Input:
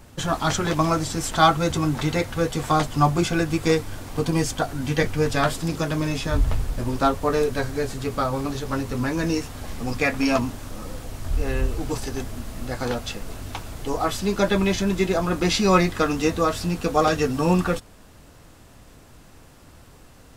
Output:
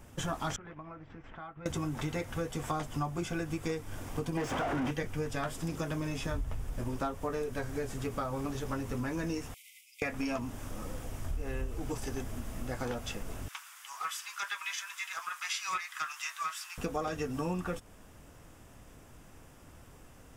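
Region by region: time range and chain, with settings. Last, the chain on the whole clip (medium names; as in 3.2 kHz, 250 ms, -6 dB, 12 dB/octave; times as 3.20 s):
0.56–1.66 s: four-pole ladder low-pass 2.7 kHz, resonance 30% + compression 10:1, threshold -35 dBFS + expander -37 dBFS
4.37–4.91 s: treble shelf 4.1 kHz -10.5 dB + overdrive pedal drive 39 dB, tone 1.3 kHz, clips at -10 dBFS
9.54–10.02 s: peaking EQ 5.8 kHz -6 dB 1.2 oct + compression 10:1, threshold -29 dBFS + brick-wall FIR high-pass 2 kHz
13.48–16.78 s: steep high-pass 1.1 kHz + loudspeaker Doppler distortion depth 0.11 ms
whole clip: peaking EQ 4.2 kHz -10.5 dB 0.29 oct; compression 5:1, threshold -26 dBFS; trim -5.5 dB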